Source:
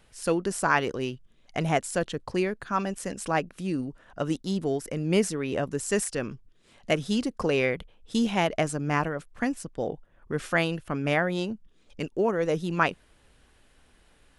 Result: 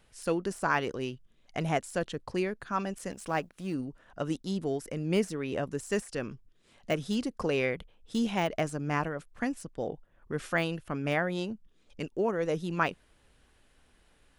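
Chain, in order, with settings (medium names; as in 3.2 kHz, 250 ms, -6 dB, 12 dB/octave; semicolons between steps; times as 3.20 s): 3.11–3.74 s: companding laws mixed up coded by A; de-esser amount 70%; trim -4 dB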